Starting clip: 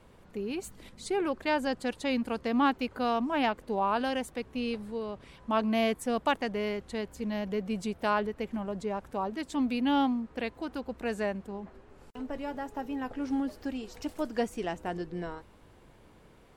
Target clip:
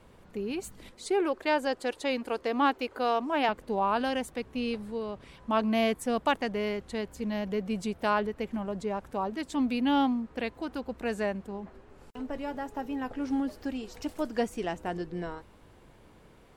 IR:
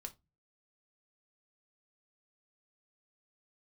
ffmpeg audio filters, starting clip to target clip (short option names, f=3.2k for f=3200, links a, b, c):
-filter_complex "[0:a]asettb=1/sr,asplit=3[a][b][c];[a]atrim=end=0.924[d];[b]atrim=start=0.92:end=3.49,asetpts=PTS-STARTPTS,afade=t=in:d=0.004:c=qsin,afade=t=out:st=2.566:d=0.004:c=qsin,lowshelf=f=260:t=q:w=1.5:g=-9.5[e];[c]atrim=start=3.486[f];[d][e]acrossfade=d=0.004:c1=hsin:c2=qsin[g];[g][f]acrossfade=d=0.004:c1=qsin:c2=hsin,volume=1dB"